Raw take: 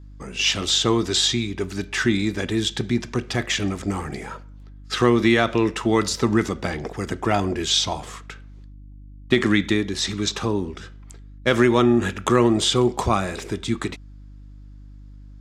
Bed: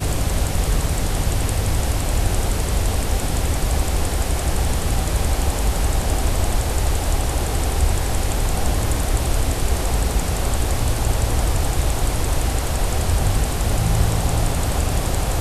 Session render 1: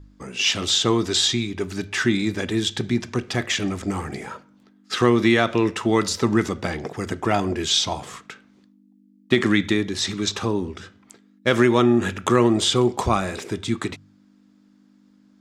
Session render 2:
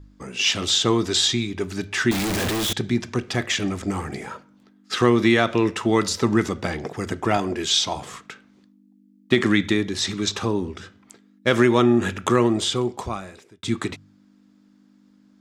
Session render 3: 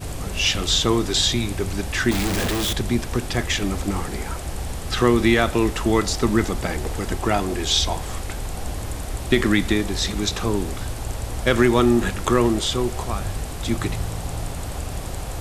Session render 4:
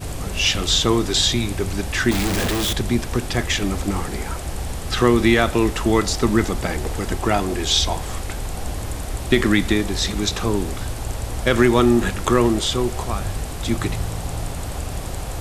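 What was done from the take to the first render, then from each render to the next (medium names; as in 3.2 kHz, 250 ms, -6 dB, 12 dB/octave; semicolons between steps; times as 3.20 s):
de-hum 50 Hz, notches 3
2.11–2.73 s: one-bit comparator; 7.37–7.96 s: high-pass 170 Hz 6 dB/octave; 12.21–13.63 s: fade out
add bed -9 dB
trim +1.5 dB; peak limiter -2 dBFS, peak gain reduction 1.5 dB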